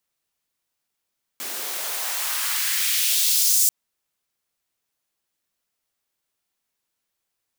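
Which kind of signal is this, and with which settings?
swept filtered noise white, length 2.29 s highpass, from 280 Hz, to 7100 Hz, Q 1.3, exponential, gain ramp +14 dB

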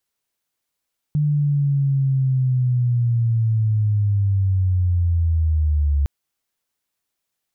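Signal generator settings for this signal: chirp linear 150 Hz -> 70 Hz -15.5 dBFS -> -15 dBFS 4.91 s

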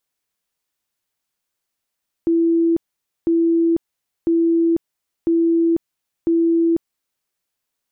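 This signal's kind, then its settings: tone bursts 333 Hz, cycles 165, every 1.00 s, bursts 5, -13 dBFS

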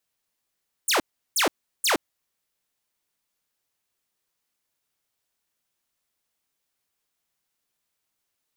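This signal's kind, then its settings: burst of laser zaps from 10000 Hz, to 250 Hz, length 0.12 s saw, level -16 dB, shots 3, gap 0.36 s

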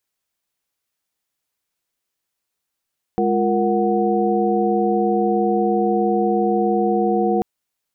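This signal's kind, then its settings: chord G#3/F4/A#4/F#5 sine, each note -21 dBFS 4.24 s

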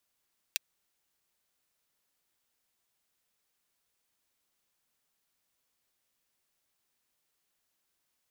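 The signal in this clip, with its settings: closed hi-hat, high-pass 2500 Hz, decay 0.02 s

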